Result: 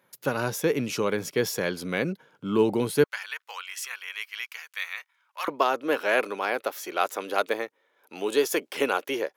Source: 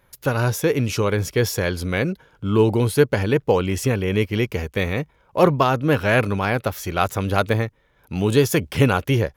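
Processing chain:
high-pass filter 160 Hz 24 dB per octave, from 0:03.04 1,200 Hz, from 0:05.48 330 Hz
level −4.5 dB

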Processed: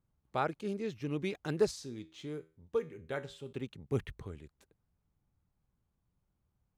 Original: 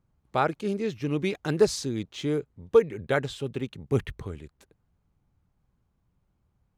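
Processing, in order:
0:01.71–0:03.53: tuned comb filter 80 Hz, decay 0.36 s, harmonics all, mix 60%
level −8 dB

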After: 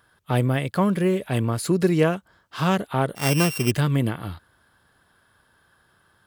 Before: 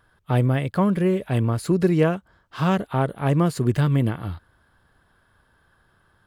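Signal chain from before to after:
0:03.15–0:03.71: samples sorted by size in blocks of 16 samples
high-pass filter 110 Hz 6 dB per octave
high-shelf EQ 3,100 Hz +7 dB

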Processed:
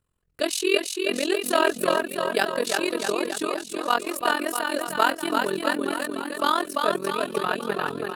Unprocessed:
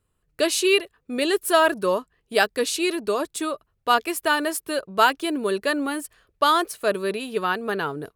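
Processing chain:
bouncing-ball delay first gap 340 ms, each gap 0.9×, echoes 5
amplitude modulation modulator 43 Hz, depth 80%

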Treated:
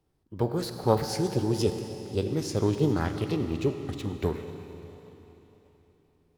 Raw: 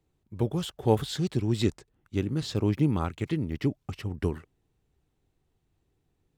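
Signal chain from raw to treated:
four-comb reverb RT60 3.6 s, combs from 33 ms, DRR 7 dB
formants moved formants +5 semitones

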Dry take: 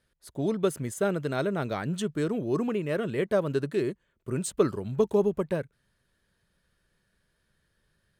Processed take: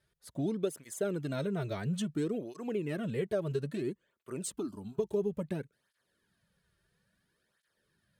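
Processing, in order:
dynamic equaliser 1,200 Hz, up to −6 dB, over −43 dBFS, Q 0.79
downward compressor 4 to 1, threshold −27 dBFS, peak gain reduction 8.5 dB
0:04.58–0:04.99: phaser with its sweep stopped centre 510 Hz, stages 6
through-zero flanger with one copy inverted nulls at 0.59 Hz, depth 4.2 ms

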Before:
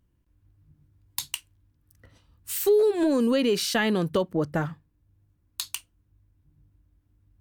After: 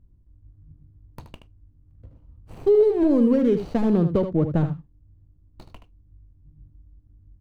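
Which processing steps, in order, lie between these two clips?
running median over 25 samples
spectral tilt −3.5 dB per octave
single-tap delay 76 ms −9.5 dB
level −1.5 dB

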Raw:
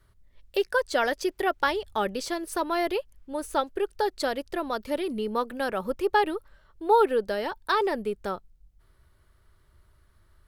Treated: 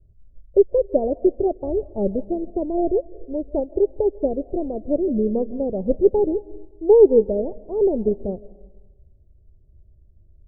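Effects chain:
Butterworth low-pass 660 Hz 48 dB per octave
low-shelf EQ 240 Hz +12 dB
on a send at −15 dB: convolution reverb RT60 1.2 s, pre-delay 110 ms
on the sum: expander for the loud parts 1.5 to 1, over −39 dBFS
level +9 dB

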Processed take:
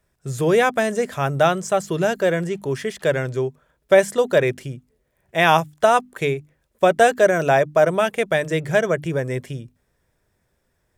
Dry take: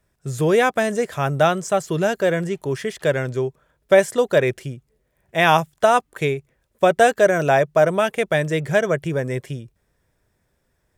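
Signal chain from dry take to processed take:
mains-hum notches 50/100/150/200/250/300 Hz

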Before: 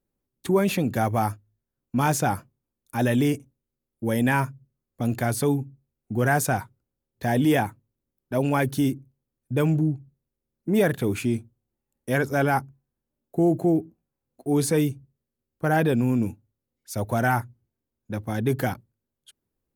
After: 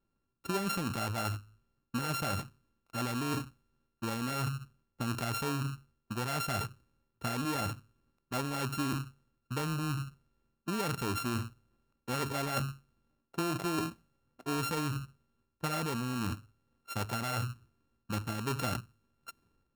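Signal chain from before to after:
samples sorted by size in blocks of 32 samples
reversed playback
downward compressor 6 to 1, threshold −34 dBFS, peak gain reduction 16.5 dB
reversed playback
transient designer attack +6 dB, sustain +10 dB
one half of a high-frequency compander decoder only

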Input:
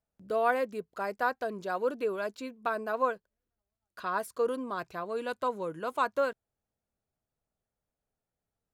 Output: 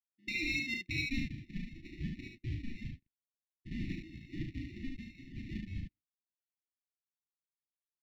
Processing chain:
downward expander −43 dBFS
octave-band graphic EQ 125/250/500/4,000/8,000 Hz +11/−7/+10/−5/+10 dB
brickwall limiter −25 dBFS, peak gain reduction 14 dB
high-pass filter sweep 320 Hz → 1,900 Hz, 0:00.91–0:01.44
decimation without filtering 30×
linear-phase brick-wall band-stop 330–1,600 Hz
high-frequency loss of the air 300 metres
on a send: ambience of single reflections 37 ms −5.5 dB, 79 ms −4 dB
on the sum: wrong playback speed 44.1 kHz file played as 48 kHz
level +3.5 dB

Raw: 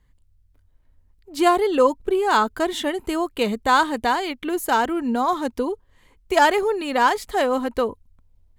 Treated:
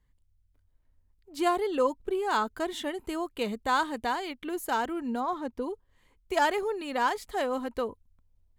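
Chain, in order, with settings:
0:05.19–0:05.61: high-shelf EQ 4,400 Hz → 2,500 Hz −11 dB
level −9 dB

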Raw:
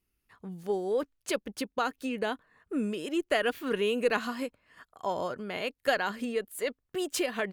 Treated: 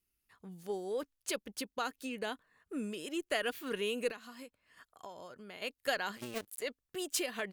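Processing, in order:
0:06.17–0:06.62: sub-harmonics by changed cycles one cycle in 2, muted
high-shelf EQ 2,900 Hz +9 dB
0:04.11–0:05.62: downward compressor 4 to 1, threshold −39 dBFS, peak gain reduction 15 dB
level −8 dB

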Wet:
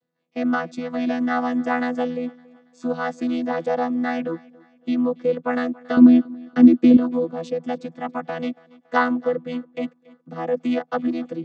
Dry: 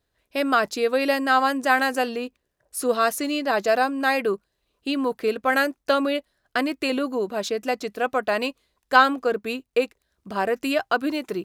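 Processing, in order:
channel vocoder with a chord as carrier bare fifth, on E3
0:05.97–0:06.97: low shelf with overshoot 490 Hz +10 dB, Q 1.5
feedback echo with a high-pass in the loop 280 ms, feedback 42%, high-pass 160 Hz, level −23 dB

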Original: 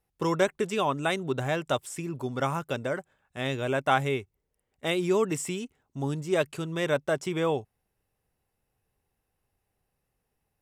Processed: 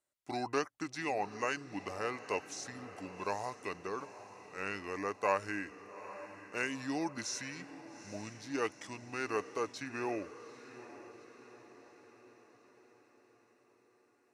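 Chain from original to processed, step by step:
high-pass filter 940 Hz 6 dB per octave
feedback delay with all-pass diffusion 625 ms, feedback 54%, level −14 dB
wrong playback speed 45 rpm record played at 33 rpm
level −4.5 dB

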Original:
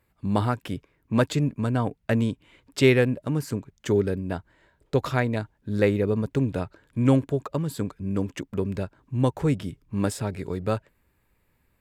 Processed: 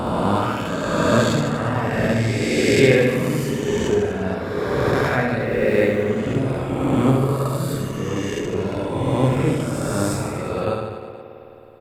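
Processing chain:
peak hold with a rise ahead of every peak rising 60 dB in 2.79 s
spring reverb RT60 3.6 s, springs 53 ms, chirp 65 ms, DRR 3.5 dB
reverb reduction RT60 1.4 s
0:05.40–0:06.04: log-companded quantiser 8 bits
on a send: reverse bouncing-ball delay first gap 70 ms, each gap 1.15×, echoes 5

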